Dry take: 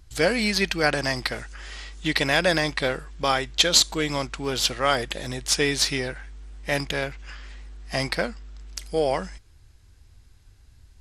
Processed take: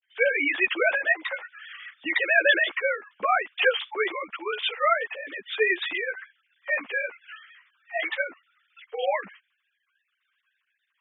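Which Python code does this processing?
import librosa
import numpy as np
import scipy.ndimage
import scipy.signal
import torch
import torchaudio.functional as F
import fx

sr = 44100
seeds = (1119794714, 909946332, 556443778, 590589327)

y = fx.sine_speech(x, sr)
y = fx.tilt_shelf(y, sr, db=-7.0, hz=640.0)
y = fx.ensemble(y, sr)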